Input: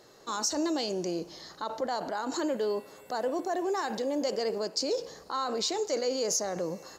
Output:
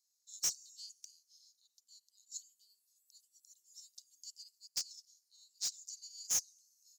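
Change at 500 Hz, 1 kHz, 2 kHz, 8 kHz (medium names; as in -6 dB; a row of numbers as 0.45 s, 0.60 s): under -40 dB, -33.5 dB, -19.5 dB, -3.0 dB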